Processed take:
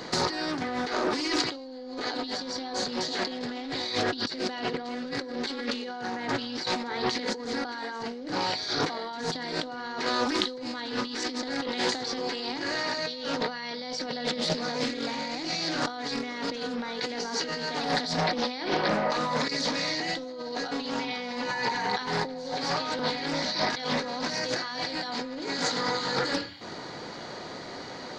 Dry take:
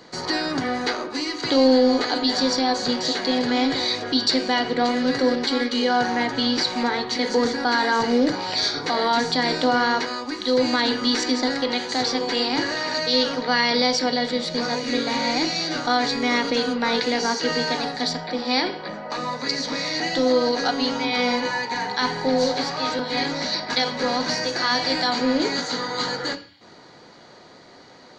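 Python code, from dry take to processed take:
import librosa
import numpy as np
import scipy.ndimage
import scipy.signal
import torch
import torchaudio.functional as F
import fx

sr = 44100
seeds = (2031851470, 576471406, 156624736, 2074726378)

y = fx.over_compress(x, sr, threshold_db=-32.0, ratio=-1.0)
y = fx.doppler_dist(y, sr, depth_ms=0.28)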